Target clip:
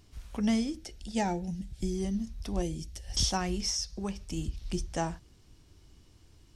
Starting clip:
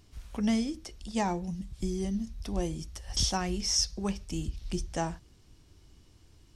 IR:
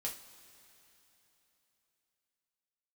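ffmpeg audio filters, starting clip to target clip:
-filter_complex "[0:a]asettb=1/sr,asplit=3[link_01][link_02][link_03];[link_01]atrim=end=0.764[link_04];[link_02]atrim=start=0.76:end=1.95,asetpts=PTS-STARTPTS,afade=type=in:duration=0.004:curve=qsin,afade=type=out:start_time=1.186:duration=0.004:curve=qsin,asuperstop=centerf=1100:order=4:qfactor=2.9[link_05];[link_03]atrim=start=1.946[link_06];[link_04][link_05]acrossfade=duration=0.004:curve1=hsin:curve2=qsin[link_07];[link_07][link_06]acrossfade=duration=0.004:curve1=qsin:curve2=hsin,asettb=1/sr,asplit=3[link_08][link_09][link_10];[link_08]atrim=end=2.624[link_11];[link_09]atrim=start=2.62:end=3.14,asetpts=PTS-STARTPTS,afade=type=in:duration=0.004:curve=qsin,afade=type=out:start_time=0.516:duration=0.004:curve=qsin,equalizer=frequency=1100:width=1.8:gain=-14.5[link_12];[link_10]atrim=start=3.136[link_13];[link_11][link_12]acrossfade=duration=0.004:curve1=hsin:curve2=qsin[link_14];[link_14][link_13]acrossfade=duration=0.004:curve1=qsin:curve2=hsin,asettb=1/sr,asplit=3[link_15][link_16][link_17];[link_15]atrim=end=3.694[link_18];[link_16]atrim=start=3.69:end=4.37,asetpts=PTS-STARTPTS,afade=type=in:duration=0.004:curve=qsin,afade=type=out:start_time=0.676:duration=0.004:curve=qsin,acompressor=threshold=-31dB:ratio=4[link_19];[link_17]atrim=start=4.366[link_20];[link_18][link_19]acrossfade=duration=0.004:curve1=hsin:curve2=qsin[link_21];[link_21][link_20]acrossfade=duration=0.004:curve1=qsin:curve2=hsin"

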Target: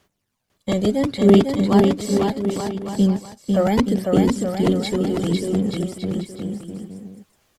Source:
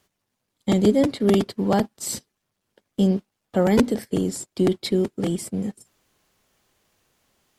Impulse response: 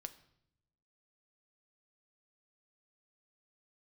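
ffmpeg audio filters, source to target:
-filter_complex "[0:a]acrossover=split=5500[link_01][link_02];[link_02]acompressor=threshold=-40dB:ratio=4:attack=1:release=60[link_03];[link_01][link_03]amix=inputs=2:normalize=0,aphaser=in_gain=1:out_gain=1:delay=1.8:decay=0.49:speed=0.72:type=sinusoidal,aecho=1:1:500|875|1156|1367|1525:0.631|0.398|0.251|0.158|0.1"

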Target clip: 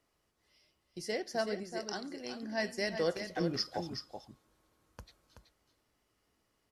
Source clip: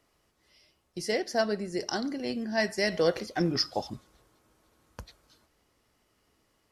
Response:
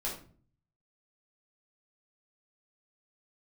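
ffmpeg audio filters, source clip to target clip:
-filter_complex "[0:a]asettb=1/sr,asplit=3[link_01][link_02][link_03];[link_01]atrim=end=1.634[link_04];[link_02]atrim=start=1.63:end=2.43,asetpts=PTS-STARTPTS,afade=type=in:duration=0.004:curve=qsin,afade=type=out:start_time=0.796:duration=0.004:curve=qsin,lowshelf=frequency=390:gain=-7[link_05];[link_03]atrim=start=2.426[link_06];[link_04][link_05]acrossfade=duration=0.004:curve1=hsin:curve2=qsin[link_07];[link_07][link_06]acrossfade=duration=0.004:curve1=qsin:curve2=hsin,asplit=2[link_08][link_09];[link_09]aecho=0:1:377:0.398[link_10];[link_08][link_10]amix=inputs=2:normalize=0,volume=-7dB"

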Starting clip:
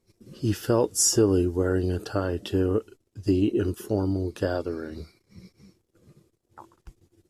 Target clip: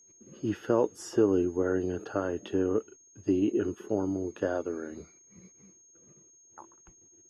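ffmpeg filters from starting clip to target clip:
ffmpeg -i in.wav -filter_complex "[0:a]acrossover=split=170 3000:gain=0.224 1 0.0631[link_01][link_02][link_03];[link_01][link_02][link_03]amix=inputs=3:normalize=0,aeval=exprs='val(0)+0.002*sin(2*PI*6500*n/s)':channel_layout=same,volume=-2.5dB" out.wav

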